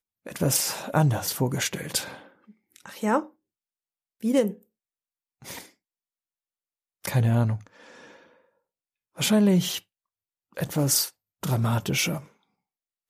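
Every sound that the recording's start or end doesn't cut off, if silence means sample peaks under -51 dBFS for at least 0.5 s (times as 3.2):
4.21–4.63
5.42–5.72
7.04–8.38
9.16–9.82
10.52–12.3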